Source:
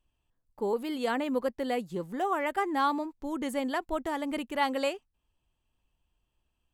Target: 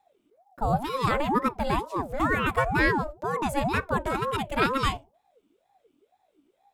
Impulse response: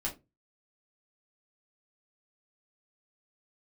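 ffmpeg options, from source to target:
-filter_complex "[0:a]asplit=2[s0][s1];[1:a]atrim=start_sample=2205,lowshelf=f=340:g=8[s2];[s1][s2]afir=irnorm=-1:irlink=0,volume=0.126[s3];[s0][s3]amix=inputs=2:normalize=0,aeval=exprs='val(0)*sin(2*PI*540*n/s+540*0.5/2.1*sin(2*PI*2.1*n/s))':c=same,volume=2.11"

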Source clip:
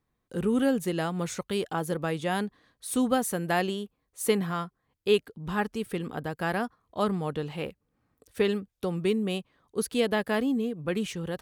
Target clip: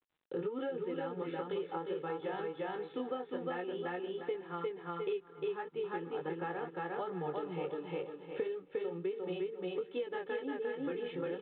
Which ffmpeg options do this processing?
-filter_complex "[0:a]acontrast=25,highpass=f=170:w=0.5412,highpass=f=170:w=1.3066,aecho=1:1:2.3:0.97,flanger=delay=16.5:depth=7.6:speed=1.4,asplit=2[s0][s1];[s1]aecho=0:1:353|706|1059:0.668|0.16|0.0385[s2];[s0][s2]amix=inputs=2:normalize=0,acompressor=threshold=0.02:ratio=10,highshelf=f=2100:g=-10,asplit=2[s3][s4];[s4]aecho=0:1:483:0.119[s5];[s3][s5]amix=inputs=2:normalize=0" -ar 8000 -c:a adpcm_g726 -b:a 40k

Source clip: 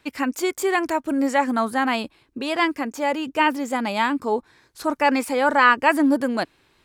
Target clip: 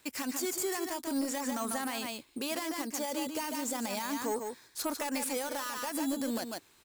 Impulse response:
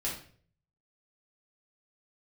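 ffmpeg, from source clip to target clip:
-filter_complex "[0:a]asplit=2[s0][s1];[s1]acrusher=samples=8:mix=1:aa=0.000001:lfo=1:lforange=8:lforate=0.37,volume=0.562[s2];[s0][s2]amix=inputs=2:normalize=0,acompressor=threshold=0.158:ratio=2.5,asoftclip=type=tanh:threshold=0.2,bass=f=250:g=0,treble=f=4000:g=14,aecho=1:1:144:0.398,alimiter=limit=0.188:level=0:latency=1:release=67,lowshelf=f=150:g=-6.5,volume=0.376"

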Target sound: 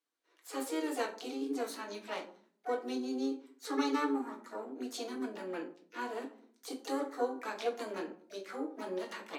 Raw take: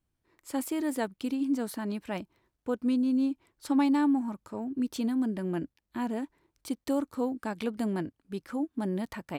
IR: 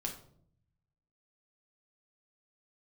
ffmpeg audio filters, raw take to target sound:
-filter_complex "[0:a]highpass=f=380:w=0.5412,highpass=f=380:w=1.3066,equalizer=f=700:t=q:w=4:g=-6,equalizer=f=1300:t=q:w=4:g=4,equalizer=f=4000:t=q:w=4:g=6,lowpass=f=10000:w=0.5412,lowpass=f=10000:w=1.3066[s0];[1:a]atrim=start_sample=2205,asetrate=61740,aresample=44100[s1];[s0][s1]afir=irnorm=-1:irlink=0,asplit=2[s2][s3];[s3]asetrate=66075,aresample=44100,atempo=0.66742,volume=0.501[s4];[s2][s4]amix=inputs=2:normalize=0"

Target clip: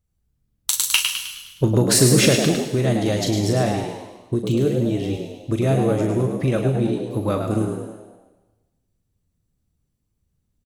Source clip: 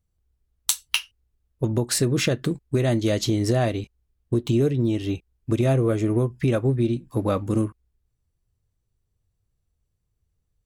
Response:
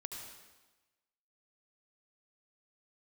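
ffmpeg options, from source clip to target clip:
-filter_complex "[0:a]asplit=7[s0][s1][s2][s3][s4][s5][s6];[s1]adelay=104,afreqshift=76,volume=0.473[s7];[s2]adelay=208,afreqshift=152,volume=0.221[s8];[s3]adelay=312,afreqshift=228,volume=0.105[s9];[s4]adelay=416,afreqshift=304,volume=0.049[s10];[s5]adelay=520,afreqshift=380,volume=0.0232[s11];[s6]adelay=624,afreqshift=456,volume=0.0108[s12];[s0][s7][s8][s9][s10][s11][s12]amix=inputs=7:normalize=0,asettb=1/sr,asplit=3[s13][s14][s15];[s13]atrim=end=0.744[s16];[s14]atrim=start=0.74:end=2.65,asetpts=PTS-STARTPTS,afade=t=in:d=0.004:c=qsin,afade=t=out:st=1.906:d=0.004:c=qsin,acontrast=47[s17];[s15]atrim=start=2.646[s18];[s16][s17]acrossfade=d=0.004:c1=hsin:c2=qsin[s19];[s19][s18]acrossfade=d=0.004:c1=qsin:c2=hsin,asplit=2[s20][s21];[1:a]atrim=start_sample=2205,highshelf=f=3600:g=11.5,adelay=39[s22];[s21][s22]afir=irnorm=-1:irlink=0,volume=0.376[s23];[s20][s23]amix=inputs=2:normalize=0"

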